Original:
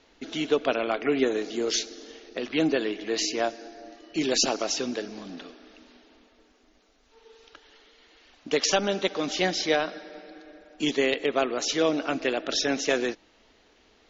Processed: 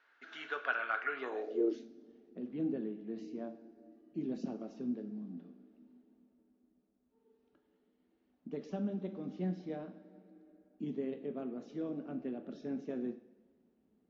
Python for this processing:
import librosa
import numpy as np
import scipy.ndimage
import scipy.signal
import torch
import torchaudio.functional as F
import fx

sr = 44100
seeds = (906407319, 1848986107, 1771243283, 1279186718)

y = fx.rev_double_slope(x, sr, seeds[0], early_s=0.53, late_s=1.8, knee_db=-18, drr_db=6.5)
y = fx.filter_sweep_bandpass(y, sr, from_hz=1500.0, to_hz=200.0, start_s=1.13, end_s=1.88, q=5.0)
y = F.gain(torch.from_numpy(y), 2.0).numpy()